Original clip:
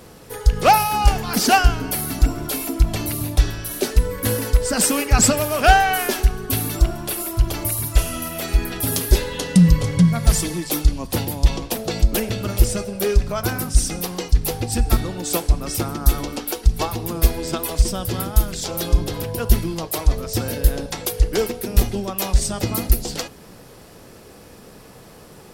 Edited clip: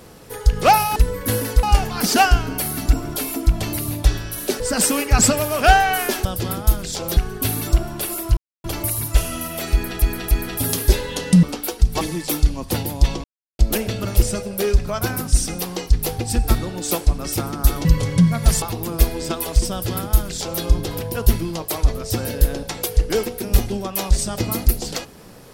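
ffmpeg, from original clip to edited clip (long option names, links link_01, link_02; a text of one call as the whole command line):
ffmpeg -i in.wav -filter_complex "[0:a]asplit=15[link_01][link_02][link_03][link_04][link_05][link_06][link_07][link_08][link_09][link_10][link_11][link_12][link_13][link_14][link_15];[link_01]atrim=end=0.962[link_16];[link_02]atrim=start=3.928:end=4.602[link_17];[link_03]atrim=start=0.958:end=3.932[link_18];[link_04]atrim=start=4.598:end=6.252[link_19];[link_05]atrim=start=17.938:end=18.862[link_20];[link_06]atrim=start=6.248:end=7.45,asetpts=PTS-STARTPTS,afade=type=out:start_time=1.198:duration=0.004:curve=hsin,apad=pad_dur=0.27[link_21];[link_07]atrim=start=7.45:end=8.832,asetpts=PTS-STARTPTS,afade=type=in:duration=0.004:curve=hsin[link_22];[link_08]atrim=start=8.538:end=8.832[link_23];[link_09]atrim=start=8.538:end=9.662[link_24];[link_10]atrim=start=16.268:end=16.852[link_25];[link_11]atrim=start=10.428:end=11.66,asetpts=PTS-STARTPTS,afade=type=out:start_time=1.228:duration=0.004:curve=hsin[link_26];[link_12]atrim=start=11.66:end=12.01,asetpts=PTS-STARTPTS,volume=0[link_27];[link_13]atrim=start=12.01:end=16.272,asetpts=PTS-STARTPTS,afade=type=in:duration=0.004:curve=hsin[link_28];[link_14]atrim=start=9.658:end=10.432[link_29];[link_15]atrim=start=16.848[link_30];[link_16][link_17]acrossfade=duration=0.004:curve1=hsin:curve2=hsin[link_31];[link_31][link_18]acrossfade=duration=0.004:curve1=hsin:curve2=hsin[link_32];[link_32][link_19]acrossfade=duration=0.004:curve1=hsin:curve2=hsin[link_33];[link_33][link_20]acrossfade=duration=0.004:curve1=hsin:curve2=hsin[link_34];[link_21][link_22]concat=n=2:v=0:a=1[link_35];[link_34][link_35]acrossfade=duration=0.004:curve1=hsin:curve2=hsin[link_36];[link_36][link_23]acrossfade=duration=0.004:curve1=hsin:curve2=hsin[link_37];[link_37][link_24]acrossfade=duration=0.004:curve1=hsin:curve2=hsin[link_38];[link_38][link_25]acrossfade=duration=0.004:curve1=hsin:curve2=hsin[link_39];[link_26][link_27][link_28]concat=n=3:v=0:a=1[link_40];[link_39][link_40]acrossfade=duration=0.004:curve1=hsin:curve2=hsin[link_41];[link_41][link_29]acrossfade=duration=0.004:curve1=hsin:curve2=hsin[link_42];[link_42][link_30]acrossfade=duration=0.004:curve1=hsin:curve2=hsin" out.wav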